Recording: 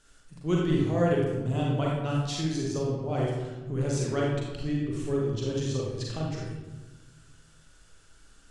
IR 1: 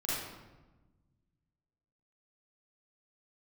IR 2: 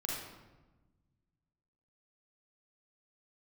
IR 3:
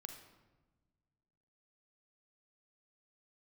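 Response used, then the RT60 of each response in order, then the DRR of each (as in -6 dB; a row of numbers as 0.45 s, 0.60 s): 2; 1.2 s, 1.2 s, no single decay rate; -9.0 dB, -3.5 dB, 5.0 dB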